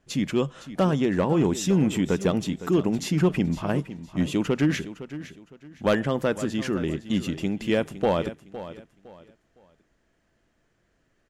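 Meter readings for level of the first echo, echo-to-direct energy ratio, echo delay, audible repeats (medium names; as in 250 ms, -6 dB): -14.0 dB, -13.5 dB, 510 ms, 2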